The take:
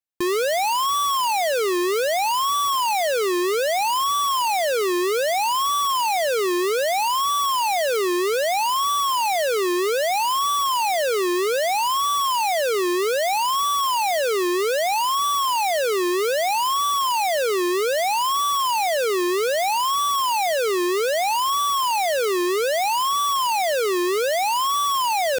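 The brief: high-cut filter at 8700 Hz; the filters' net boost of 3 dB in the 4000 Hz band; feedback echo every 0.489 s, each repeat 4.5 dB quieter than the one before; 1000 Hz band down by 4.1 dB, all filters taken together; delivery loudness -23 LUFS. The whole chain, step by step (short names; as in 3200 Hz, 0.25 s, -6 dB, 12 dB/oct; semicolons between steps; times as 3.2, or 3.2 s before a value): LPF 8700 Hz; bell 1000 Hz -5 dB; bell 4000 Hz +4.5 dB; feedback echo 0.489 s, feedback 60%, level -4.5 dB; gain -3 dB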